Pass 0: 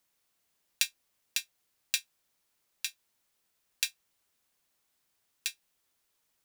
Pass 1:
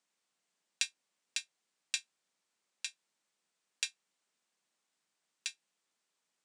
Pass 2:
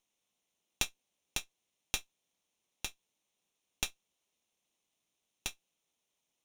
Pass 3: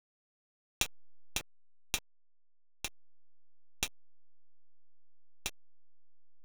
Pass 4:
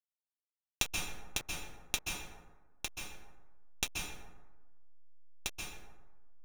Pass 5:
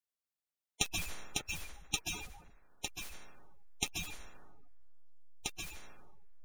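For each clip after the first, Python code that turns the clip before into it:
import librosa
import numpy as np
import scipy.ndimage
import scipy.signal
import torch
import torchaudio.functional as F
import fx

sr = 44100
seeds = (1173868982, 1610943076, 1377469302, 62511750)

y1 = scipy.signal.sosfilt(scipy.signal.ellip(3, 1.0, 40, [170.0, 8400.0], 'bandpass', fs=sr, output='sos'), x)
y1 = y1 * librosa.db_to_amplitude(-3.5)
y2 = fx.lower_of_two(y1, sr, delay_ms=0.32)
y2 = y2 * librosa.db_to_amplitude(1.5)
y3 = fx.delta_hold(y2, sr, step_db=-38.0)
y4 = fx.rev_plate(y3, sr, seeds[0], rt60_s=1.2, hf_ratio=0.45, predelay_ms=120, drr_db=0.0)
y5 = fx.spec_quant(y4, sr, step_db=30)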